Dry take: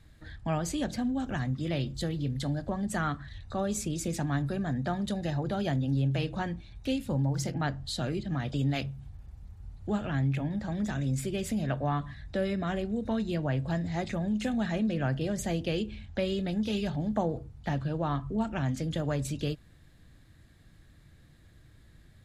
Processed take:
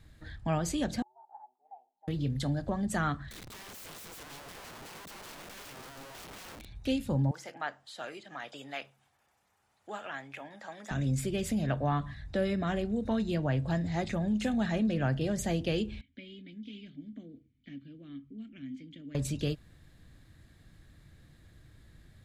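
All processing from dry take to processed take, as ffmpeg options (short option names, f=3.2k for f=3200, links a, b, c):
-filter_complex "[0:a]asettb=1/sr,asplit=3[a][b][c];[a]atrim=end=1.024[d];[b]atrim=start=1.02:end=2.08,asetpts=PTS-STARTPTS,afade=t=in:d=0.004:c=qsin,afade=t=out:st=1.056:d=0.004:c=qsin,aeval=exprs='val(0)*sin(2*PI*120*n/s)':c=same,asuperpass=centerf=820:order=4:qfactor=7.3[e];[c]atrim=start=2.076[f];[d][e]acrossfade=d=0.004:c1=hsin:c2=qsin[g];[g][f]acrossfade=d=0.004:c1=qsin:c2=hsin,asettb=1/sr,asplit=3[h][i][j];[h]atrim=end=3.304[k];[i]atrim=start=3.3:end=6.66,asetpts=PTS-STARTPTS,afade=t=in:d=0.004:c=qsin,afade=t=out:st=3.356:d=0.004:c=qsin,acompressor=threshold=-37dB:ratio=8:attack=3.2:release=140:knee=1:detection=peak,aeval=exprs='(mod(133*val(0)+1,2)-1)/133':c=same[l];[j]atrim=start=6.656[m];[k][l]acrossfade=d=0.004:c1=hsin:c2=qsin[n];[n][m]acrossfade=d=0.004:c1=qsin:c2=hsin,asettb=1/sr,asplit=3[o][p][q];[o]atrim=end=7.314[r];[p]atrim=start=7.31:end=10.91,asetpts=PTS-STARTPTS,afade=t=in:d=0.004:c=qsin,afade=t=out:st=3.596:d=0.004:c=qsin,highpass=720,acrossover=split=2900[s][t];[t]acompressor=threshold=-48dB:ratio=4:attack=1:release=60[u];[s][u]amix=inputs=2:normalize=0,equalizer=f=4.2k:w=3.1:g=-5[v];[q]atrim=start=10.906[w];[r][v]acrossfade=d=0.004:c1=hsin:c2=qsin[x];[x][w]acrossfade=d=0.004:c1=qsin:c2=hsin,asettb=1/sr,asplit=3[y][z][aa];[y]atrim=end=16.014[ab];[z]atrim=start=16.01:end=19.15,asetpts=PTS-STARTPTS,afade=t=in:d=0.004:c=qsin,afade=t=out:st=3.136:d=0.004:c=qsin,asplit=3[ac][ad][ae];[ac]bandpass=f=270:t=q:w=8,volume=0dB[af];[ad]bandpass=f=2.29k:t=q:w=8,volume=-6dB[ag];[ae]bandpass=f=3.01k:t=q:w=8,volume=-9dB[ah];[af][ag][ah]amix=inputs=3:normalize=0,equalizer=f=500:w=0.34:g=-4[ai];[aa]atrim=start=19.146[aj];[ab][ai]acrossfade=d=0.004:c1=hsin:c2=qsin[ak];[ak][aj]acrossfade=d=0.004:c1=qsin:c2=hsin"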